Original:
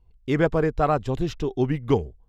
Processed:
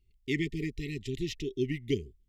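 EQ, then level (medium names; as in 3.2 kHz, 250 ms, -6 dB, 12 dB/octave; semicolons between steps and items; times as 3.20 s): brick-wall FIR band-stop 430–1800 Hz; bass shelf 450 Hz -11 dB; 0.0 dB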